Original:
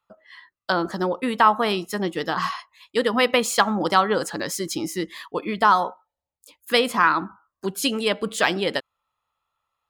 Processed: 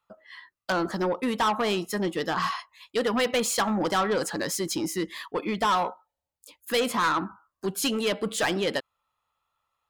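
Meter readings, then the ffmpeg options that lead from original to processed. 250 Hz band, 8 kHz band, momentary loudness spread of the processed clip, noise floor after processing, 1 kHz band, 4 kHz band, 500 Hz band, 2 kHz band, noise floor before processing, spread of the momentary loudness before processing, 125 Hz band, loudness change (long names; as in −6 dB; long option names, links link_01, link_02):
−2.5 dB, −0.5 dB, 10 LU, below −85 dBFS, −6.0 dB, −4.0 dB, −3.5 dB, −6.0 dB, below −85 dBFS, 12 LU, −2.0 dB, −4.5 dB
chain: -af "asoftclip=type=tanh:threshold=-19.5dB"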